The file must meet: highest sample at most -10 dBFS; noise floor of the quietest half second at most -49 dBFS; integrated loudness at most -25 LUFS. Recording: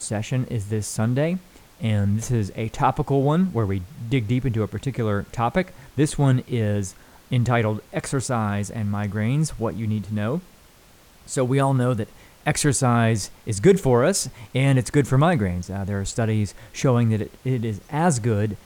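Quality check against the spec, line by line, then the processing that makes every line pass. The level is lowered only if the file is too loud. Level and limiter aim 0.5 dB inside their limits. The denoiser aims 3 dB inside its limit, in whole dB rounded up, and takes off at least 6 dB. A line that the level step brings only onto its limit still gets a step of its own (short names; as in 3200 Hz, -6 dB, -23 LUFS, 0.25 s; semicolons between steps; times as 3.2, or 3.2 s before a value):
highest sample -5.0 dBFS: fail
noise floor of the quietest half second -52 dBFS: OK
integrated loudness -23.0 LUFS: fail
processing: gain -2.5 dB; limiter -10.5 dBFS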